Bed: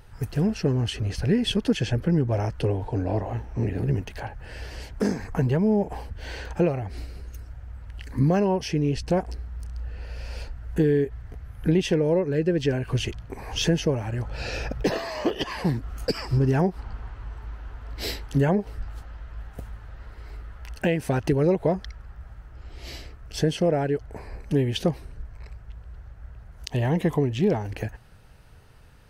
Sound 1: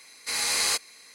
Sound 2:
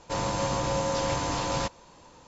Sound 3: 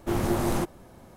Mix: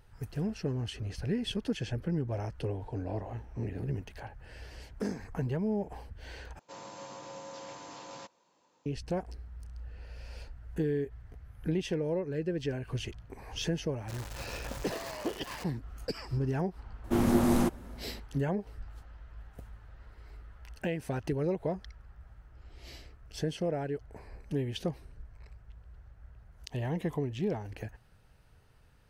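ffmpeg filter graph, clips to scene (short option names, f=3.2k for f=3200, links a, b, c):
-filter_complex "[2:a]asplit=2[a][b];[0:a]volume=-10dB[c];[a]highpass=210[d];[b]acrusher=bits=3:mix=0:aa=0.000001[e];[3:a]equalizer=f=240:w=4.4:g=11[f];[c]asplit=2[g][h];[g]atrim=end=6.594[i];[d]atrim=end=2.27,asetpts=PTS-STARTPTS,volume=-16.5dB[j];[h]atrim=start=8.856[k];[e]atrim=end=2.27,asetpts=PTS-STARTPTS,volume=-18dB,afade=t=in:d=0.004:c=hsin,afade=t=out:st=2.266:d=0.004:c=hsin,adelay=13970[l];[f]atrim=end=1.16,asetpts=PTS-STARTPTS,volume=-2.5dB,afade=t=in:d=0.004:c=hsin,afade=t=out:st=1.156:d=0.004:c=hsin,adelay=17040[m];[i][j]acrossfade=d=0.004:c1=hsin:c2=hsin[n];[n][k]acrossfade=d=0.004:c1=hsin:c2=hsin[o];[o][l][m]amix=inputs=3:normalize=0"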